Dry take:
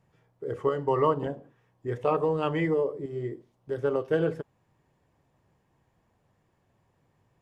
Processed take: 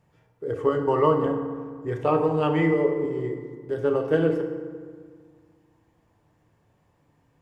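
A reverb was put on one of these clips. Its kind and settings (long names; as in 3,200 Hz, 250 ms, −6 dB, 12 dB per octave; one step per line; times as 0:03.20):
feedback delay network reverb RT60 1.8 s, low-frequency decay 1.3×, high-frequency decay 0.55×, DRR 4.5 dB
level +2.5 dB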